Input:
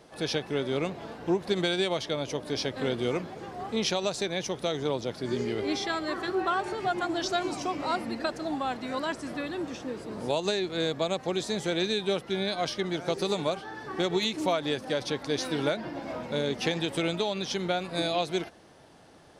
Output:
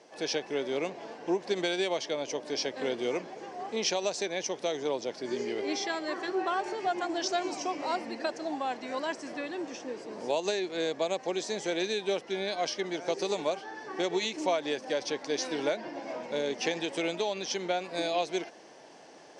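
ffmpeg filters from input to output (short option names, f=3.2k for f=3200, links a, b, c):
-af "highpass=330,equalizer=f=1.3k:t=q:w=4:g=-8,equalizer=f=3.7k:t=q:w=4:g=-6,equalizer=f=5.8k:t=q:w=4:g=4,lowpass=f=7.7k:w=0.5412,lowpass=f=7.7k:w=1.3066,areverse,acompressor=mode=upward:threshold=-45dB:ratio=2.5,areverse"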